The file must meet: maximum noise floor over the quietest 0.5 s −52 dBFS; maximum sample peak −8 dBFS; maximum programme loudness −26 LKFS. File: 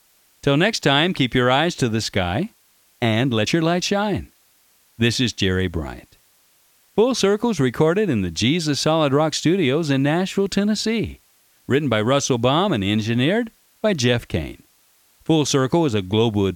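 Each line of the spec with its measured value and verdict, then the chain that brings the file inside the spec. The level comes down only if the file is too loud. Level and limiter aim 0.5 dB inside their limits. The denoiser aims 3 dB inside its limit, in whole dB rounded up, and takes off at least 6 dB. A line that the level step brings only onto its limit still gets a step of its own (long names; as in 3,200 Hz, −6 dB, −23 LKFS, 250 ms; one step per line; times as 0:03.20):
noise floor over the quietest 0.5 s −58 dBFS: in spec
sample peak −3.5 dBFS: out of spec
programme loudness −20.0 LKFS: out of spec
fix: level −6.5 dB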